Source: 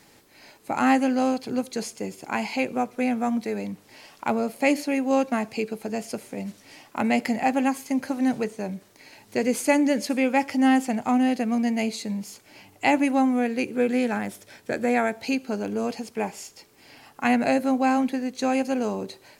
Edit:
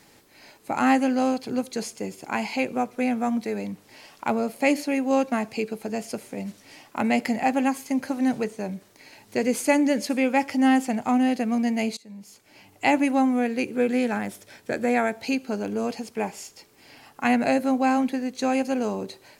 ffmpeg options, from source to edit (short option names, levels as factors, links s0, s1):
-filter_complex "[0:a]asplit=2[s0][s1];[s0]atrim=end=11.97,asetpts=PTS-STARTPTS,afade=t=out:st=11.966:d=0.004:c=hsin:silence=0.0707946[s2];[s1]atrim=start=11.97,asetpts=PTS-STARTPTS,afade=t=in:d=0.89:silence=0.0707946[s3];[s2][s3]concat=n=2:v=0:a=1"